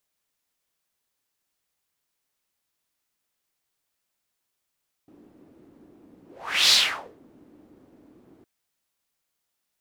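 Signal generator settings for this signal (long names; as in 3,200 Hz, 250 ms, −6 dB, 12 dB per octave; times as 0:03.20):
pass-by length 3.36 s, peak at 0:01.63, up 0.48 s, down 0.51 s, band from 300 Hz, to 4,300 Hz, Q 3.2, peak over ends 37 dB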